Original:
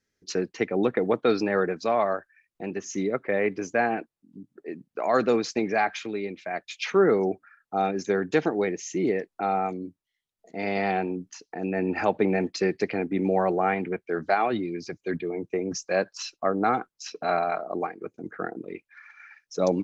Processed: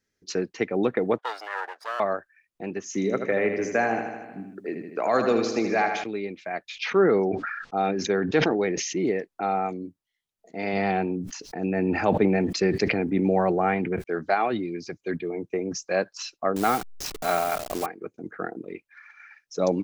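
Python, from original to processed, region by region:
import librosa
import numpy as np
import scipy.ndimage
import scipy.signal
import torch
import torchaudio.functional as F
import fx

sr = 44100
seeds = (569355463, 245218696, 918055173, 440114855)

y = fx.chain(x, sr, fx.lower_of_two(delay_ms=0.59),
    fx.highpass(hz=690.0, slope=24),
    fx.high_shelf(hz=2200.0, db=-8.0), at=(1.18, 2.0))
y = fx.chain(y, sr, fx.echo_feedback(ms=78, feedback_pct=58, wet_db=-7.0),
    fx.band_squash(depth_pct=40), at=(2.94, 6.04))
y = fx.chain(y, sr, fx.lowpass(hz=5400.0, slope=24),
    fx.sustainer(db_per_s=37.0), at=(6.7, 8.99))
y = fx.chain(y, sr, fx.low_shelf(hz=160.0, db=8.5),
    fx.sustainer(db_per_s=55.0), at=(10.73, 14.04))
y = fx.chain(y, sr, fx.delta_hold(step_db=-33.5),
    fx.high_shelf(hz=2900.0, db=8.0), at=(16.56, 17.86))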